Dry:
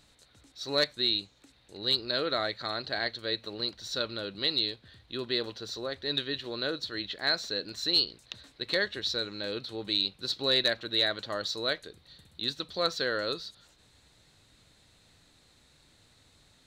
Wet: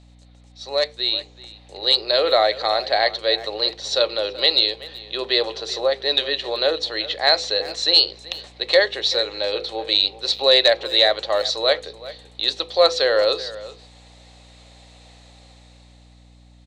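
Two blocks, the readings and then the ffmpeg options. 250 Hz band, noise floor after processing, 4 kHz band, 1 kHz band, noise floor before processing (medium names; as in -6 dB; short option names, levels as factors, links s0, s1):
+2.0 dB, -49 dBFS, +10.5 dB, +14.0 dB, -63 dBFS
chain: -filter_complex "[0:a]highpass=f=390:w=0.5412,highpass=f=390:w=1.3066,equalizer=f=540:t=q:w=4:g=7,equalizer=f=770:t=q:w=4:g=9,equalizer=f=1500:t=q:w=4:g=-9,lowpass=f=8800:w=0.5412,lowpass=f=8800:w=1.3066,bandreject=f=50:t=h:w=6,bandreject=f=100:t=h:w=6,bandreject=f=150:t=h:w=6,bandreject=f=200:t=h:w=6,bandreject=f=250:t=h:w=6,bandreject=f=300:t=h:w=6,bandreject=f=350:t=h:w=6,bandreject=f=400:t=h:w=6,bandreject=f=450:t=h:w=6,bandreject=f=500:t=h:w=6,dynaudnorm=f=180:g=13:m=3.55,equalizer=f=2000:t=o:w=1.7:g=3,asplit=2[s0][s1];[s1]adelay=380,highpass=300,lowpass=3400,asoftclip=type=hard:threshold=0.282,volume=0.158[s2];[s0][s2]amix=inputs=2:normalize=0,aeval=exprs='val(0)+0.00398*(sin(2*PI*60*n/s)+sin(2*PI*2*60*n/s)/2+sin(2*PI*3*60*n/s)/3+sin(2*PI*4*60*n/s)/4+sin(2*PI*5*60*n/s)/5)':c=same"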